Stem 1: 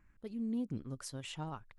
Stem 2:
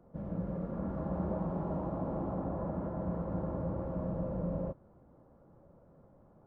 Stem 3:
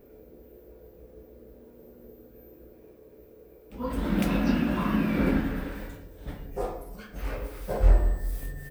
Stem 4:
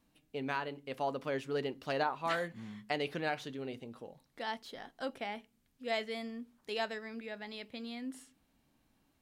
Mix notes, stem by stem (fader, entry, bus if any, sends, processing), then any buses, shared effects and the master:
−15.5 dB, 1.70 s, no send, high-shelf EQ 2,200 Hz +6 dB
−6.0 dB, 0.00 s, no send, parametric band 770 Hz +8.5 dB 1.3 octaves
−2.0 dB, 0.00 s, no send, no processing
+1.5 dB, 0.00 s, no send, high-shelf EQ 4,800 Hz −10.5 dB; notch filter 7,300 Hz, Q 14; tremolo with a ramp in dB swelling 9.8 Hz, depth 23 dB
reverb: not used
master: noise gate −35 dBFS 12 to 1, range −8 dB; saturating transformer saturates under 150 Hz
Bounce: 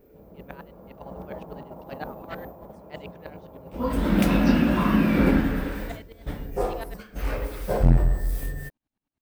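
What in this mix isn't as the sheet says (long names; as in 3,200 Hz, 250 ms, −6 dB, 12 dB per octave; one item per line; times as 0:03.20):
stem 1 −15.5 dB → −23.5 dB
stem 3 −2.0 dB → +5.5 dB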